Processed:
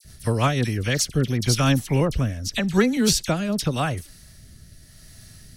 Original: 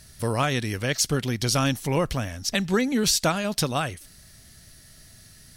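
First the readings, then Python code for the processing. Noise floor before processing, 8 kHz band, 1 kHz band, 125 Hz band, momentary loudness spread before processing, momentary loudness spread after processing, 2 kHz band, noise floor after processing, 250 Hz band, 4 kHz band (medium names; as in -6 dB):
-51 dBFS, 0.0 dB, 0.0 dB, +5.5 dB, 7 LU, 6 LU, +0.5 dB, -48 dBFS, +4.0 dB, 0.0 dB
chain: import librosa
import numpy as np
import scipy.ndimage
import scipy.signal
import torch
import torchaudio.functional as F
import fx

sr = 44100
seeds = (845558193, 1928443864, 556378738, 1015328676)

y = fx.low_shelf(x, sr, hz=210.0, db=6.0)
y = fx.dispersion(y, sr, late='lows', ms=47.0, hz=2000.0)
y = fx.rotary_switch(y, sr, hz=6.3, then_hz=0.85, switch_at_s=0.29)
y = y * 10.0 ** (2.5 / 20.0)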